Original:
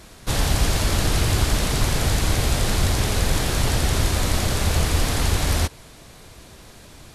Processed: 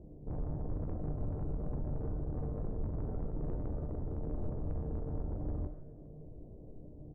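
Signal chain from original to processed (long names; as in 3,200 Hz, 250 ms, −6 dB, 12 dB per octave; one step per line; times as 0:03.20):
inverse Chebyshev low-pass filter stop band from 1,400 Hz, stop band 50 dB
in parallel at +2.5 dB: downward compressor, threshold −30 dBFS, peak gain reduction 15 dB
on the sum: soft clipping −23 dBFS, distortion −7 dB
tuned comb filter 150 Hz, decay 0.94 s, harmonics all, mix 80%
single-tap delay 409 ms −22 dB
on a send at −10 dB: convolution reverb RT60 0.25 s, pre-delay 100 ms
on the sum: level +1 dB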